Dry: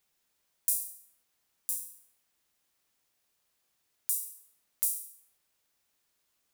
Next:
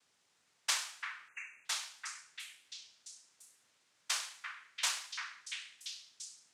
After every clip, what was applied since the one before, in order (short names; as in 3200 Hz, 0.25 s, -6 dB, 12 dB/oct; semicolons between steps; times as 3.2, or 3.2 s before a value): noise vocoder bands 2; delay with a stepping band-pass 0.342 s, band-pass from 1600 Hz, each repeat 0.7 oct, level -1.5 dB; spectral delete 1.28–1.66, 2800–6000 Hz; gain +5.5 dB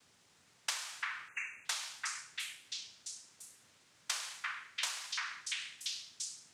low shelf 230 Hz +11.5 dB; compressor 16:1, threshold -40 dBFS, peak gain reduction 13.5 dB; gain +6.5 dB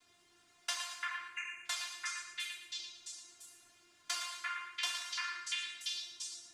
resonator 350 Hz, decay 0.2 s, harmonics all, mix 90%; thinning echo 0.114 s, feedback 35%, level -9 dB; reverb, pre-delay 3 ms, DRR 3.5 dB; gain +9 dB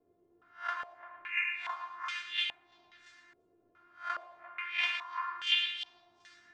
spectral swells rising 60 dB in 0.31 s; stepped low-pass 2.4 Hz 470–3100 Hz